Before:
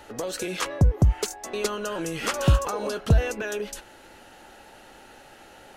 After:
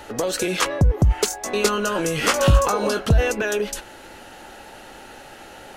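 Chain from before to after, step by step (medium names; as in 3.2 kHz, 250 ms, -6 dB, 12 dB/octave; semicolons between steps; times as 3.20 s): in parallel at -0.5 dB: compressor with a negative ratio -20 dBFS, ratio -0.5; 1.25–3.06 s: on the sum: doubling 20 ms -6.5 dB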